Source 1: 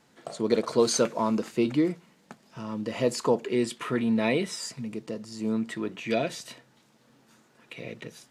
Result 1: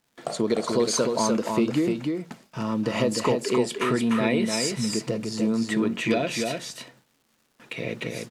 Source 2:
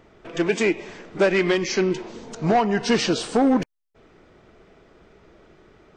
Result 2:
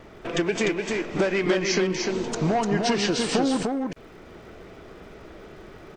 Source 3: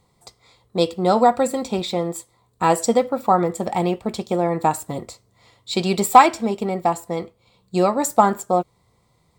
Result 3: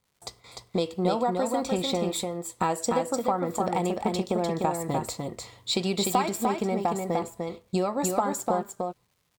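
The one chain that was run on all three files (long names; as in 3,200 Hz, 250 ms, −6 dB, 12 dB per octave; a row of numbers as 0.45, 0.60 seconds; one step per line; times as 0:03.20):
noise gate with hold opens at −47 dBFS
downward compressor 5 to 1, threshold −29 dBFS
surface crackle 310 per second −61 dBFS
tape wow and flutter 28 cents
single-tap delay 299 ms −4 dB
normalise the peak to −9 dBFS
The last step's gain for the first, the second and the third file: +8.0, +7.0, +4.0 decibels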